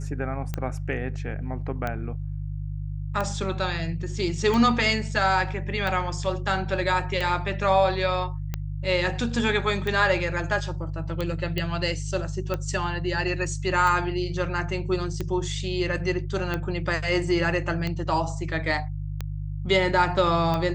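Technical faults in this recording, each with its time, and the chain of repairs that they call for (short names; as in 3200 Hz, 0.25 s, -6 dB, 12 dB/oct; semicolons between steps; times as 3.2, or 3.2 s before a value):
hum 50 Hz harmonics 3 -31 dBFS
tick 45 rpm -15 dBFS
11.58 pop -14 dBFS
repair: de-click; de-hum 50 Hz, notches 3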